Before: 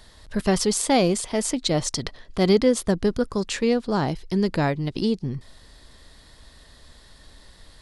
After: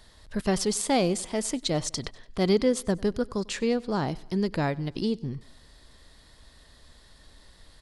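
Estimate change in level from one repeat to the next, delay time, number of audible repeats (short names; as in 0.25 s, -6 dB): -5.5 dB, 97 ms, 2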